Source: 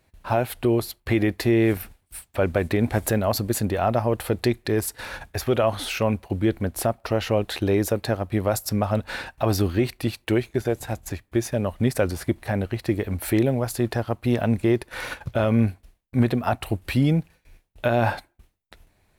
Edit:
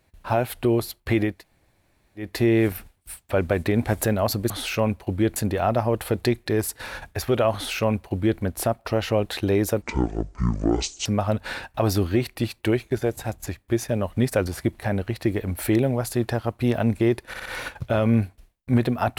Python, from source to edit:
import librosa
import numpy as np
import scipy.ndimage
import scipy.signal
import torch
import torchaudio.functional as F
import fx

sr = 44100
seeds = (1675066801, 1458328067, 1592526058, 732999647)

y = fx.edit(x, sr, fx.insert_room_tone(at_s=1.32, length_s=0.95, crossfade_s=0.24),
    fx.duplicate(start_s=5.73, length_s=0.86, to_s=3.55),
    fx.speed_span(start_s=8.01, length_s=0.68, speed=0.55),
    fx.stutter(start_s=14.91, slice_s=0.06, count=4), tone=tone)